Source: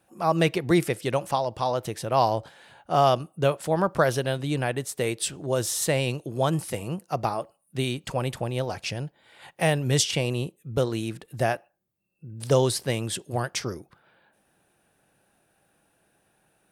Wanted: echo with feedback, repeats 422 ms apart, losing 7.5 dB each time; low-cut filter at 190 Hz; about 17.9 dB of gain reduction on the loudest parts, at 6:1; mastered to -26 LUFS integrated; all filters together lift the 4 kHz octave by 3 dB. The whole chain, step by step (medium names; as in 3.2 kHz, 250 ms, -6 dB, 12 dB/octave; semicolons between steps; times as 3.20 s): high-pass 190 Hz; peaking EQ 4 kHz +4 dB; compression 6:1, threshold -36 dBFS; feedback delay 422 ms, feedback 42%, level -7.5 dB; trim +13.5 dB